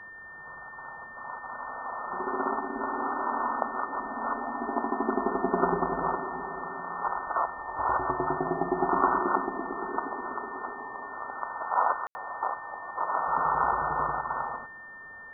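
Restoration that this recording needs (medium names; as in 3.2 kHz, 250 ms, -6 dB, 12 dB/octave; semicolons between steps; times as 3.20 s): band-stop 1.8 kHz, Q 30; room tone fill 12.07–12.15 s; noise print and reduce 30 dB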